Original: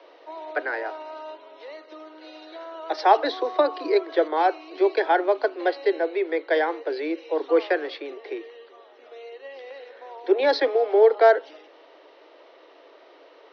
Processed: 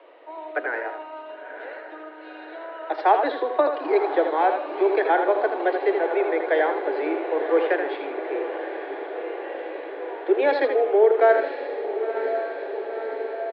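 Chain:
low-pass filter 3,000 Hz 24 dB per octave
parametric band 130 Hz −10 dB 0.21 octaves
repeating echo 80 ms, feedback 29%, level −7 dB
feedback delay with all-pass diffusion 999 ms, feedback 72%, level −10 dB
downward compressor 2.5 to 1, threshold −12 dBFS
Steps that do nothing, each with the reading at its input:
parametric band 130 Hz: nothing at its input below 250 Hz

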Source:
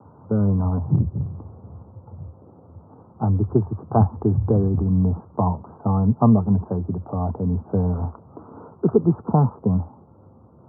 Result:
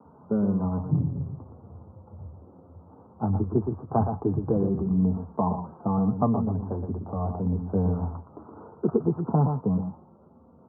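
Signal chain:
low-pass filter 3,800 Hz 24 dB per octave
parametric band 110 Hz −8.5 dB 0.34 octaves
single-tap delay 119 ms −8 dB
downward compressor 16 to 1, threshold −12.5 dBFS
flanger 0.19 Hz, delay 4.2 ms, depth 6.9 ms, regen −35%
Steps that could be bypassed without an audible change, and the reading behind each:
low-pass filter 3,800 Hz: nothing at its input above 1,200 Hz

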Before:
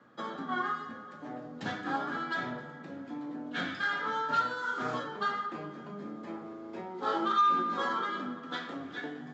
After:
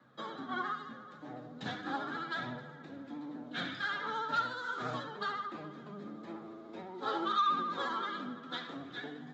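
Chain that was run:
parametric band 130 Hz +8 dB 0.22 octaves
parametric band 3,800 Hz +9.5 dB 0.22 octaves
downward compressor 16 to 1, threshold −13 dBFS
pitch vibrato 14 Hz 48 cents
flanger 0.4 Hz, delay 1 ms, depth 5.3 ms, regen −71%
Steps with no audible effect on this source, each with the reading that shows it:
downward compressor, threshold −13 dBFS: peak of its input −17.0 dBFS

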